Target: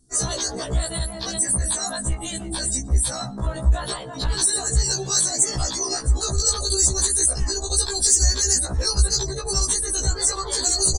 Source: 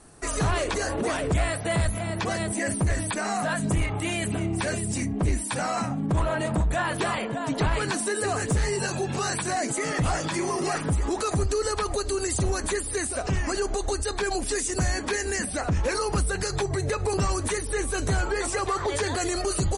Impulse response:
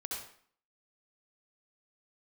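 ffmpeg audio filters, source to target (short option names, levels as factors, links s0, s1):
-filter_complex "[0:a]aemphasis=mode=reproduction:type=75kf,afftdn=nr=25:nf=-43,asubboost=boost=4:cutoff=78,atempo=1.8,asplit=2[s0][s1];[s1]adelay=119,lowpass=f=3400:p=1,volume=0.075,asplit=2[s2][s3];[s3]adelay=119,lowpass=f=3400:p=1,volume=0.2[s4];[s0][s2][s4]amix=inputs=3:normalize=0,aexciter=amount=15.8:drive=9.6:freq=4000,afftfilt=real='re*1.73*eq(mod(b,3),0)':imag='im*1.73*eq(mod(b,3),0)':win_size=2048:overlap=0.75"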